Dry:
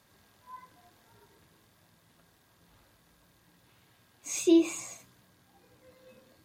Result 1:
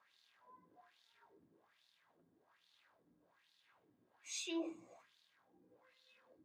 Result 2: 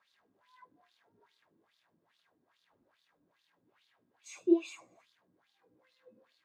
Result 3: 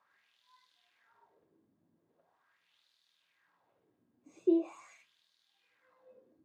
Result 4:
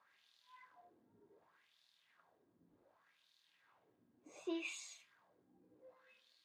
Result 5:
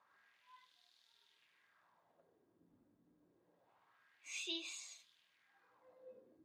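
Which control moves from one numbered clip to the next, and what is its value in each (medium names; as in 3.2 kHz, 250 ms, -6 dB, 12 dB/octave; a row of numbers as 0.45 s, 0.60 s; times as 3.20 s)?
wah-wah, rate: 1.2 Hz, 2.4 Hz, 0.42 Hz, 0.67 Hz, 0.26 Hz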